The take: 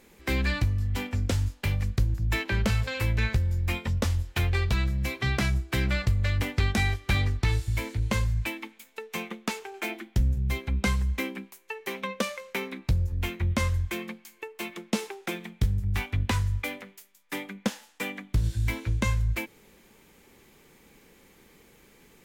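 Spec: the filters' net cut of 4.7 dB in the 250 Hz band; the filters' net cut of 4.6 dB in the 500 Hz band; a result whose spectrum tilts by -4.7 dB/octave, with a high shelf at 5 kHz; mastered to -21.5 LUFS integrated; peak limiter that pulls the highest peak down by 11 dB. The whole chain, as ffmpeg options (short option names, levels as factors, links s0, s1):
-af "equalizer=f=250:t=o:g=-5.5,equalizer=f=500:t=o:g=-4,highshelf=f=5000:g=3.5,volume=4.47,alimiter=limit=0.266:level=0:latency=1"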